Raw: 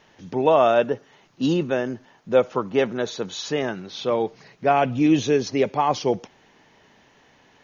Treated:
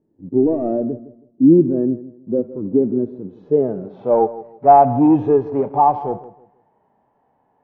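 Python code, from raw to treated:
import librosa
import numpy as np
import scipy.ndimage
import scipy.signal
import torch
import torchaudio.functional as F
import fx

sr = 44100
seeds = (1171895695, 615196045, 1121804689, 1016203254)

p1 = fx.leveller(x, sr, passes=2)
p2 = fx.filter_sweep_lowpass(p1, sr, from_hz=320.0, to_hz=830.0, start_s=3.24, end_s=4.13, q=2.6)
p3 = fx.hpss(p2, sr, part='percussive', gain_db=-15)
p4 = p3 + fx.echo_filtered(p3, sr, ms=161, feedback_pct=28, hz=2100.0, wet_db=-16.0, dry=0)
y = F.gain(torch.from_numpy(p4), -1.5).numpy()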